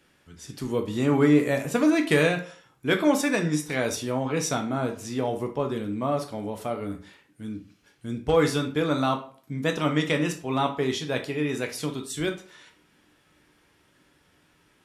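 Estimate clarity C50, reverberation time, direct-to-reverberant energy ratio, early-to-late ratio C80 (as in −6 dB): 11.0 dB, 0.45 s, 3.5 dB, 16.5 dB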